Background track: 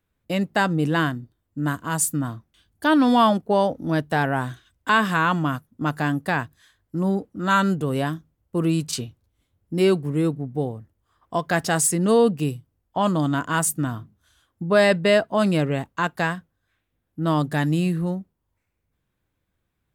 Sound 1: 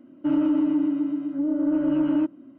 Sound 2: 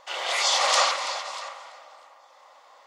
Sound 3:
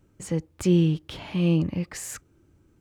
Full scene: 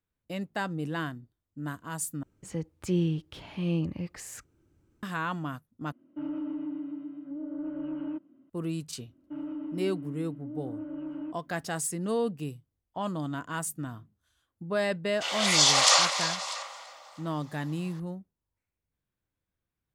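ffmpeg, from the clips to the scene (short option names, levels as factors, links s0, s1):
-filter_complex "[1:a]asplit=2[s0][s1];[0:a]volume=0.266[s2];[2:a]highshelf=f=3500:g=10[s3];[s2]asplit=3[s4][s5][s6];[s4]atrim=end=2.234[s7];[3:a]atrim=end=2.8,asetpts=PTS-STARTPTS,volume=0.447[s8];[s5]atrim=start=5.026:end=5.924[s9];[s0]atrim=end=2.58,asetpts=PTS-STARTPTS,volume=0.224[s10];[s6]atrim=start=8.496[s11];[s1]atrim=end=2.58,asetpts=PTS-STARTPTS,volume=0.168,afade=t=in:d=0.004:c=hsin,afade=t=out:st=2.576:d=0.004:c=hsin,adelay=399546S[s12];[s3]atrim=end=2.86,asetpts=PTS-STARTPTS,volume=0.668,afade=t=in:d=0.004:c=hsin,afade=t=out:st=2.856:d=0.004:c=hsin,adelay=15140[s13];[s7][s8]acrossfade=d=0.004:c1=hsin:c2=hsin[s14];[s14][s9]acrossfade=d=0.004:c1=hsin:c2=hsin[s15];[s15][s10]acrossfade=d=0.004:c1=hsin:c2=hsin[s16];[s16][s11]acrossfade=d=0.004:c1=hsin:c2=hsin[s17];[s17][s12][s13]amix=inputs=3:normalize=0"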